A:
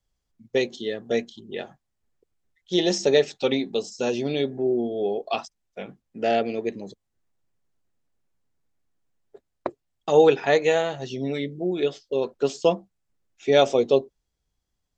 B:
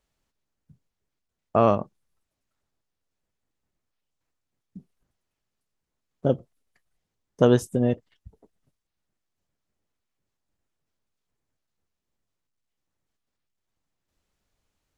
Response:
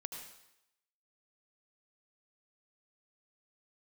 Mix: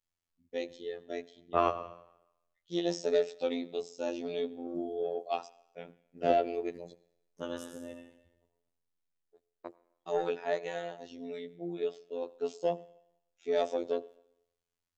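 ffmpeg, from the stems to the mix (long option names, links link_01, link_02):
-filter_complex "[0:a]adynamicequalizer=threshold=0.0251:dfrequency=650:dqfactor=0.73:tfrequency=650:tqfactor=0.73:attack=5:release=100:ratio=0.375:range=3.5:mode=boostabove:tftype=bell,dynaudnorm=framelen=280:gausssize=17:maxgain=11.5dB,asoftclip=type=tanh:threshold=-2.5dB,volume=-13.5dB,asplit=3[link_01][link_02][link_03];[link_02]volume=-13dB[link_04];[1:a]tiltshelf=frequency=640:gain=-6,volume=-6dB,asplit=2[link_05][link_06];[link_06]volume=-6.5dB[link_07];[link_03]apad=whole_len=660411[link_08];[link_05][link_08]sidechaingate=range=-33dB:threshold=-47dB:ratio=16:detection=peak[link_09];[2:a]atrim=start_sample=2205[link_10];[link_04][link_07]amix=inputs=2:normalize=0[link_11];[link_11][link_10]afir=irnorm=-1:irlink=0[link_12];[link_01][link_09][link_12]amix=inputs=3:normalize=0,afftfilt=real='hypot(re,im)*cos(PI*b)':imag='0':win_size=2048:overlap=0.75"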